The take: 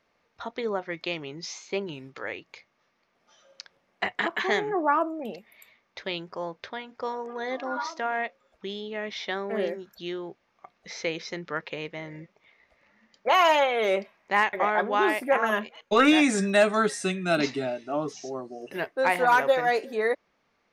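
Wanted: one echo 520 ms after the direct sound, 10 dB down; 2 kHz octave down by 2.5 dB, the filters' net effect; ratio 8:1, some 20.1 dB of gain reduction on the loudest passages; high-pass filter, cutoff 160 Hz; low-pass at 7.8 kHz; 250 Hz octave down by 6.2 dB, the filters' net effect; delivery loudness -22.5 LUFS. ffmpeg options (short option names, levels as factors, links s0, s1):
-af "highpass=160,lowpass=7800,equalizer=f=250:t=o:g=-7.5,equalizer=f=2000:t=o:g=-3,acompressor=threshold=0.0112:ratio=8,aecho=1:1:520:0.316,volume=10.6"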